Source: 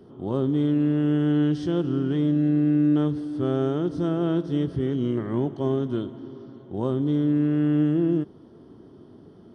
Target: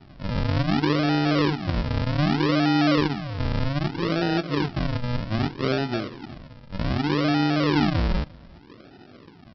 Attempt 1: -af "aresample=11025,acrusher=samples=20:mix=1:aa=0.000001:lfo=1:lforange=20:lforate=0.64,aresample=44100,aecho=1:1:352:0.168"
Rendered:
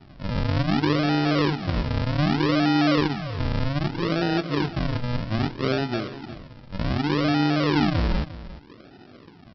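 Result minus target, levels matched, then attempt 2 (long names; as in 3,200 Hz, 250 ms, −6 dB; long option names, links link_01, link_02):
echo-to-direct +10 dB
-af "aresample=11025,acrusher=samples=20:mix=1:aa=0.000001:lfo=1:lforange=20:lforate=0.64,aresample=44100,aecho=1:1:352:0.0531"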